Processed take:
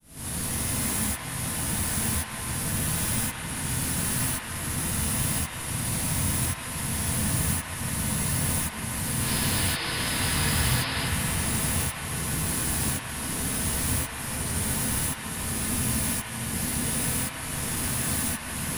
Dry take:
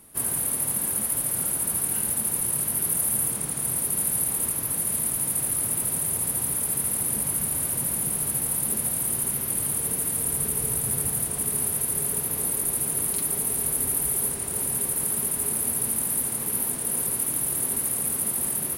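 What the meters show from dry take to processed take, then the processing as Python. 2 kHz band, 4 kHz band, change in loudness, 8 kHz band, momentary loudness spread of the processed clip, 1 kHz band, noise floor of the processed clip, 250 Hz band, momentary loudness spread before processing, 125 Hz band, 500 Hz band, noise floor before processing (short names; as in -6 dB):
+10.5 dB, +11.0 dB, -3.0 dB, -5.0 dB, 5 LU, +6.0 dB, -36 dBFS, +6.0 dB, 2 LU, +8.5 dB, 0.0 dB, -31 dBFS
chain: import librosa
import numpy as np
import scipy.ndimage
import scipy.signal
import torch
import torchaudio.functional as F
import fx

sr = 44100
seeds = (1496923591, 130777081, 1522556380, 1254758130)

p1 = fx.delta_mod(x, sr, bps=64000, step_db=-29.0)
p2 = fx.rider(p1, sr, range_db=10, speed_s=0.5)
p3 = fx.tremolo_shape(p2, sr, shape='saw_up', hz=0.93, depth_pct=100)
p4 = 10.0 ** (-36.0 / 20.0) * np.tanh(p3 / 10.0 ** (-36.0 / 20.0))
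p5 = fx.spec_paint(p4, sr, seeds[0], shape='noise', start_s=9.2, length_s=1.81, low_hz=260.0, high_hz=5300.0, level_db=-42.0)
p6 = fx.bass_treble(p5, sr, bass_db=14, treble_db=2)
p7 = p6 + fx.echo_wet_bandpass(p6, sr, ms=158, feedback_pct=84, hz=1500.0, wet_db=-3.0, dry=0)
y = fx.rev_gated(p7, sr, seeds[1], gate_ms=100, shape='rising', drr_db=-7.0)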